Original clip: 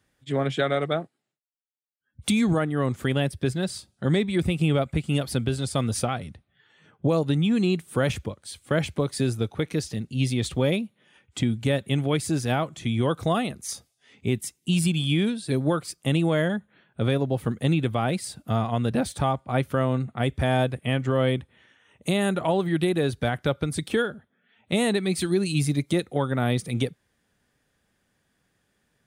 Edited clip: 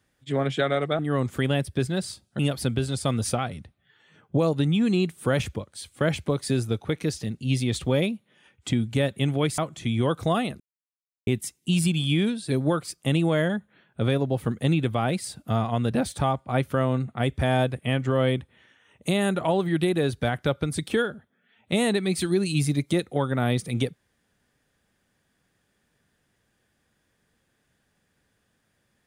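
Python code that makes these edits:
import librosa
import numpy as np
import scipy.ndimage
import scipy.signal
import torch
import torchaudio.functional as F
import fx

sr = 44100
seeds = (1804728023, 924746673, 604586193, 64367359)

y = fx.edit(x, sr, fx.cut(start_s=0.99, length_s=1.66),
    fx.cut(start_s=4.05, length_s=1.04),
    fx.cut(start_s=12.28, length_s=0.3),
    fx.silence(start_s=13.6, length_s=0.67), tone=tone)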